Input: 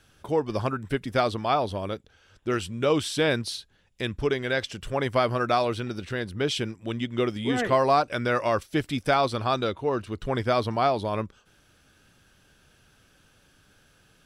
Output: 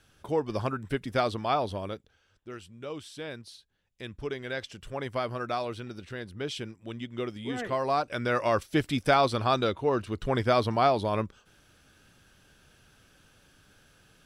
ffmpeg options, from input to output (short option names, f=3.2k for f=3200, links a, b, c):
-af "volume=12.5dB,afade=t=out:st=1.73:d=0.76:silence=0.237137,afade=t=in:st=3.56:d=0.93:silence=0.421697,afade=t=in:st=7.79:d=0.9:silence=0.398107"